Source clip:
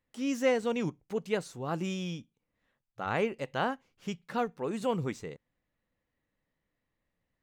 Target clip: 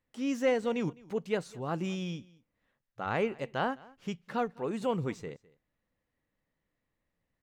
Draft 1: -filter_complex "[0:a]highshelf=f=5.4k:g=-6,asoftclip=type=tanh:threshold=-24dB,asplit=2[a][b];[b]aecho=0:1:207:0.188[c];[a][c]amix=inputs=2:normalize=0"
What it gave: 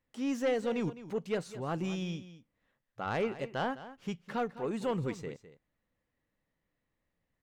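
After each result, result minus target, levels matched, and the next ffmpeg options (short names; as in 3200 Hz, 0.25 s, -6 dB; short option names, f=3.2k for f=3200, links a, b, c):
soft clip: distortion +15 dB; echo-to-direct +8.5 dB
-filter_complex "[0:a]highshelf=f=5.4k:g=-6,asoftclip=type=tanh:threshold=-13.5dB,asplit=2[a][b];[b]aecho=0:1:207:0.188[c];[a][c]amix=inputs=2:normalize=0"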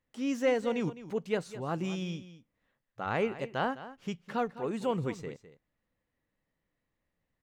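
echo-to-direct +8.5 dB
-filter_complex "[0:a]highshelf=f=5.4k:g=-6,asoftclip=type=tanh:threshold=-13.5dB,asplit=2[a][b];[b]aecho=0:1:207:0.0708[c];[a][c]amix=inputs=2:normalize=0"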